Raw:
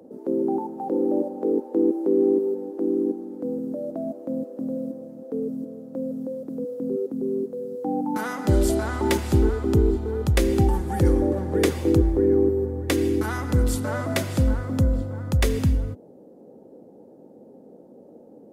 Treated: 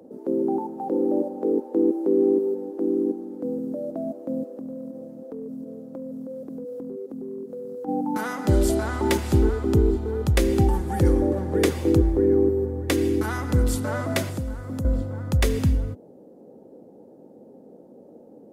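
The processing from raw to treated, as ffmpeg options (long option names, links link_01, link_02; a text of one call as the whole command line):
ffmpeg -i in.wav -filter_complex "[0:a]asplit=3[link_01][link_02][link_03];[link_01]afade=type=out:start_time=4.53:duration=0.02[link_04];[link_02]acompressor=threshold=-31dB:ratio=6:attack=3.2:release=140:knee=1:detection=peak,afade=type=in:start_time=4.53:duration=0.02,afade=type=out:start_time=7.87:duration=0.02[link_05];[link_03]afade=type=in:start_time=7.87:duration=0.02[link_06];[link_04][link_05][link_06]amix=inputs=3:normalize=0,asettb=1/sr,asplit=3[link_07][link_08][link_09];[link_07]atrim=end=14.294[link_10];[link_08]atrim=start=14.29:end=14.85,asetpts=PTS-STARTPTS,afade=type=in:duration=0.004:curve=qsin,afade=type=out:start_time=0.556:duration=0.004:curve=qsin,acrossover=split=480|1500|6200[link_11][link_12][link_13][link_14];[link_11]acompressor=threshold=-30dB:ratio=3[link_15];[link_12]acompressor=threshold=-45dB:ratio=3[link_16];[link_13]acompressor=threshold=-55dB:ratio=3[link_17];[link_14]acompressor=threshold=-48dB:ratio=3[link_18];[link_15][link_16][link_17][link_18]amix=inputs=4:normalize=0[link_19];[link_09]atrim=start=14.846[link_20];[link_10][link_19]acrossfade=duration=0.004:curve1=hsin:curve2=qsin[link_21];[link_21][link_20]acrossfade=duration=0.004:curve1=qsin:curve2=hsin" out.wav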